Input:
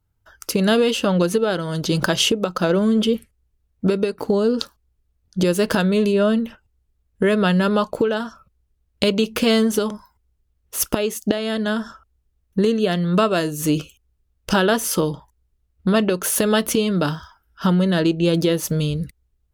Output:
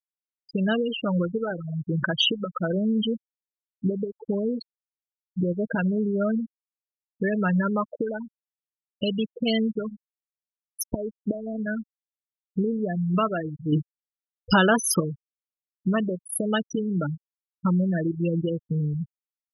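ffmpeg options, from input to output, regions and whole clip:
-filter_complex "[0:a]asettb=1/sr,asplit=3[a][b][c];[a]atrim=end=13.724[d];[b]atrim=start=13.72:end=15,asetpts=PTS-STARTPTS,afade=t=in:d=0.004:c=qsin,afade=t=out:st=1.276:d=0.004:c=qsin,highpass=f=51:p=1,equalizer=f=1.8k:t=o:w=0.45:g=-2.5,acontrast=61[e];[c]atrim=start=14.996[f];[d][e]acrossfade=d=0.004:c1=hsin:c2=qsin[g];[g][f]acrossfade=d=0.004:c1=qsin:c2=hsin,afftfilt=real='re*gte(hypot(re,im),0.282)':imag='im*gte(hypot(re,im),0.282)':win_size=1024:overlap=0.75,equalizer=f=420:t=o:w=2.3:g=-9.5"

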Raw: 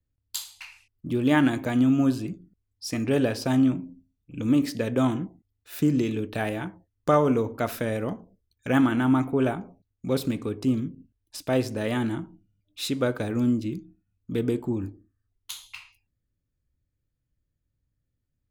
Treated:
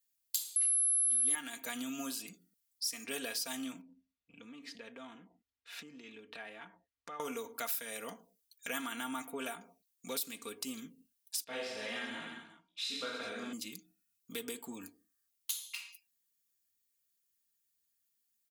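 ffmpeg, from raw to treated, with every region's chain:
-filter_complex "[0:a]asettb=1/sr,asplit=3[a][b][c];[a]atrim=end=0.564[d];[b]atrim=start=0.56:end=1.35,asetpts=PTS-STARTPTS,afade=t=in:d=0.004:c=qsin,afade=t=out:st=0.786:d=0.004:c=qsin,equalizer=f=2.5k:t=o:w=0.26:g=-8.5,aecho=1:1:7.1:0.75,atrim=end_sample=34839,aeval=exprs='val(0)+0.0501*sin(2*PI*11000*n/s)':c=same[e];[c]atrim=start=1.346[f];[d][e]acrossfade=d=0.004:c1=hsin:c2=qsin[g];[g][f]acrossfade=d=0.004:c1=qsin:c2=hsin,asettb=1/sr,asplit=3[h][i][j];[h]atrim=end=3.814[k];[i]atrim=start=3.81:end=7.2,asetpts=PTS-STARTPTS,afade=t=in:d=0.004:c=qsin,afade=t=out:st=3.386:d=0.004:c=qsin,lowpass=2.5k,acompressor=threshold=-40dB:ratio=3:attack=3.2:release=140:knee=1:detection=peak,equalizer=f=60:t=o:w=0.99:g=7.5[l];[j]atrim=start=7.196[m];[k][l]acrossfade=d=0.004:c1=hsin:c2=qsin[n];[n][m]acrossfade=d=0.004:c1=qsin:c2=hsin,asettb=1/sr,asplit=3[o][p][q];[o]atrim=end=11.444[r];[p]atrim=start=11.44:end=13.53,asetpts=PTS-STARTPTS,afade=t=in:d=0.004:c=qsin,afade=t=out:st=2.086:d=0.004:c=qsin,lowpass=3.4k,flanger=delay=15.5:depth=3.7:speed=1.8,aecho=1:1:30|66|109.2|161|223.2|297.9|387.5:0.794|0.631|0.501|0.398|0.316|0.251|0.2,atrim=end_sample=92169[s];[q]atrim=start=13.526[t];[r][s]acrossfade=d=0.004:c1=hsin:c2=qsin[u];[u][t]acrossfade=d=0.004:c1=qsin:c2=hsin,aderivative,aecho=1:1:4.3:0.64,acompressor=threshold=-50dB:ratio=2.5,volume=10.5dB"

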